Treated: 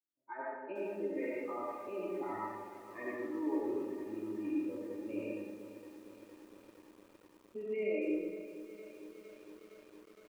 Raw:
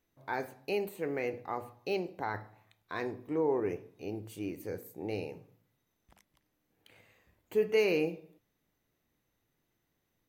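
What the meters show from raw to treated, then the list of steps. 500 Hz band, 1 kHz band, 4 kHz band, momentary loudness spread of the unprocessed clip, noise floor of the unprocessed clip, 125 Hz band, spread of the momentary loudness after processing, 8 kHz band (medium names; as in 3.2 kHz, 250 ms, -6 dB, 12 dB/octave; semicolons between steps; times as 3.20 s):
-6.0 dB, -4.0 dB, under -15 dB, 13 LU, -80 dBFS, -13.0 dB, 20 LU, no reading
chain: band-stop 1.5 kHz, Q 16; low-pass that closes with the level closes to 1.5 kHz, closed at -30.5 dBFS; spectral noise reduction 22 dB; level-controlled noise filter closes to 400 Hz, open at -27.5 dBFS; high-pass 230 Hz 12 dB/octave; resonant high shelf 3.3 kHz -10.5 dB, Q 1.5; comb 3.3 ms, depth 91%; peak limiter -30.5 dBFS, peak gain reduction 11 dB; flange 0.68 Hz, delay 6.3 ms, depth 4.6 ms, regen -37%; algorithmic reverb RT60 1.3 s, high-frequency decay 0.5×, pre-delay 40 ms, DRR -5 dB; bit-crushed delay 461 ms, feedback 80%, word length 9-bit, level -14 dB; trim -1 dB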